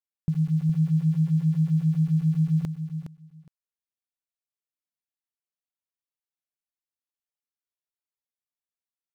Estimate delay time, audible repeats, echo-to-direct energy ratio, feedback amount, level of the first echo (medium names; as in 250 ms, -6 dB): 414 ms, 2, -9.0 dB, 16%, -9.0 dB